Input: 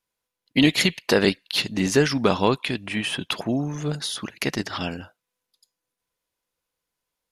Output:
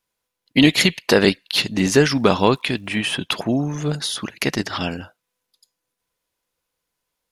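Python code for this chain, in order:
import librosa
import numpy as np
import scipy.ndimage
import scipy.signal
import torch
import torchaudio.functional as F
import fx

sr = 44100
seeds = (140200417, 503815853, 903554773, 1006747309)

y = fx.dmg_crackle(x, sr, seeds[0], per_s=290.0, level_db=-50.0, at=(1.82, 2.98), fade=0.02)
y = F.gain(torch.from_numpy(y), 4.0).numpy()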